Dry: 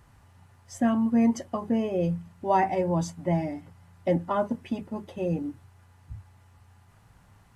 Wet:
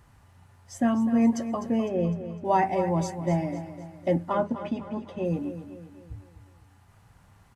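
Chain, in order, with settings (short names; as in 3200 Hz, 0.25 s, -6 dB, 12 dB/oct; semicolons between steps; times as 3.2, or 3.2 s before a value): 1.88–2.45 high shelf 3800 Hz -12 dB; 4.33–5.25 Bessel low-pass 5400 Hz, order 2; feedback echo 0.253 s, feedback 47%, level -11.5 dB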